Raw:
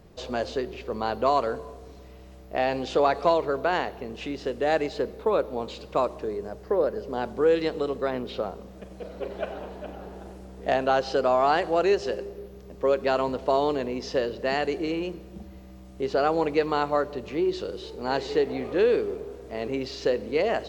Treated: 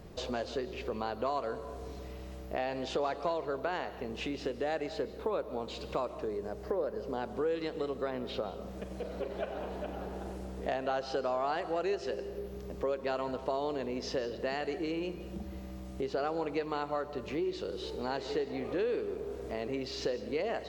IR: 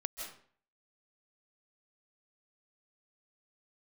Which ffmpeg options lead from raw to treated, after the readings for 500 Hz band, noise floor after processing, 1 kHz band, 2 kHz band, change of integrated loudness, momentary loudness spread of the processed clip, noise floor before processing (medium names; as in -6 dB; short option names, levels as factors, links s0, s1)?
-9.0 dB, -44 dBFS, -10.0 dB, -9.0 dB, -9.5 dB, 8 LU, -46 dBFS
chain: -filter_complex "[0:a]acompressor=threshold=0.0112:ratio=2.5,asplit=2[s0][s1];[1:a]atrim=start_sample=2205[s2];[s1][s2]afir=irnorm=-1:irlink=0,volume=0.398[s3];[s0][s3]amix=inputs=2:normalize=0"